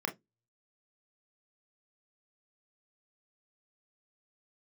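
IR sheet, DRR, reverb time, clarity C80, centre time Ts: 3.0 dB, 0.15 s, 30.0 dB, 12 ms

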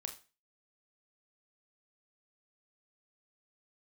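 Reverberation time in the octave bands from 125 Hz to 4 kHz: 0.30 s, 0.35 s, 0.35 s, 0.35 s, 0.35 s, 0.30 s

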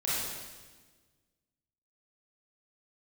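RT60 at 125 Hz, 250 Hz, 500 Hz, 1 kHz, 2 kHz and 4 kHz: 1.9 s, 1.8 s, 1.5 s, 1.3 s, 1.3 s, 1.3 s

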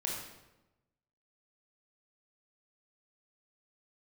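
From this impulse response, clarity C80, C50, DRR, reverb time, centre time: 4.5 dB, 1.5 dB, -2.5 dB, 1.0 s, 57 ms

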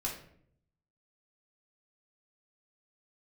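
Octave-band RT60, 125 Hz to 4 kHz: 1.1 s, 0.85 s, 0.75 s, 0.55 s, 0.55 s, 0.40 s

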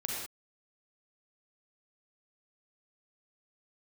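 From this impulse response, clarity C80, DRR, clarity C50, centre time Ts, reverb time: 1.5 dB, -3.0 dB, -1.5 dB, 70 ms, no single decay rate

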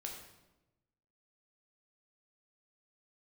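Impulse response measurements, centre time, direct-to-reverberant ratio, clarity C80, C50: 38 ms, 0.0 dB, 6.5 dB, 4.5 dB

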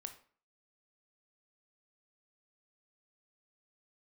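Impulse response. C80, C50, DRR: 16.0 dB, 11.5 dB, 6.5 dB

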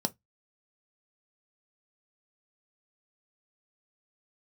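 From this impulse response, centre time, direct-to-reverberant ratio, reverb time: 3 ms, 8.0 dB, no single decay rate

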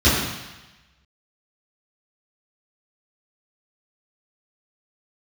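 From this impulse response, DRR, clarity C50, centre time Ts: -13.0 dB, 1.0 dB, 72 ms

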